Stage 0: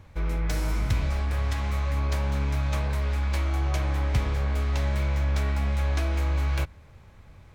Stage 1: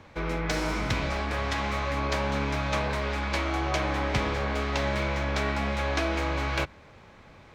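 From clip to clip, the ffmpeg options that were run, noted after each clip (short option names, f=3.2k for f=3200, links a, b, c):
-filter_complex "[0:a]acrossover=split=180 6700:gain=0.178 1 0.178[a][b][c];[a][b][c]amix=inputs=3:normalize=0,volume=6.5dB"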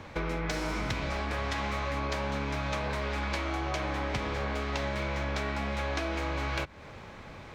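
-af "acompressor=threshold=-35dB:ratio=6,volume=5.5dB"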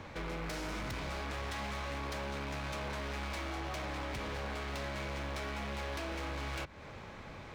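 -af "volume=35dB,asoftclip=hard,volume=-35dB,volume=-2dB"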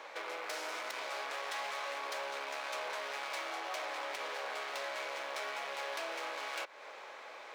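-af "highpass=f=480:w=0.5412,highpass=f=480:w=1.3066,volume=2dB"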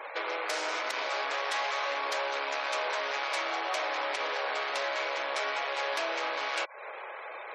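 -af "afftfilt=real='re*gte(hypot(re,im),0.00316)':imag='im*gte(hypot(re,im),0.00316)':win_size=1024:overlap=0.75,volume=8dB"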